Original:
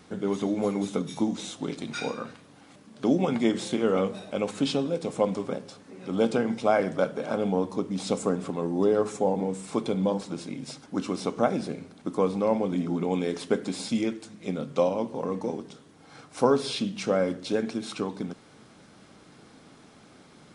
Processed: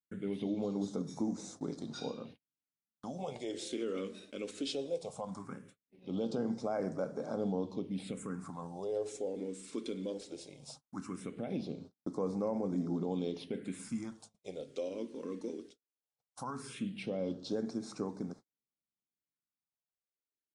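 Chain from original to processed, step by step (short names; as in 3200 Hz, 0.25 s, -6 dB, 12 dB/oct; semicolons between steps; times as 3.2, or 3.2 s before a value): gate -42 dBFS, range -44 dB; limiter -17.5 dBFS, peak gain reduction 9.5 dB; phaser stages 4, 0.18 Hz, lowest notch 130–3000 Hz; gain -7.5 dB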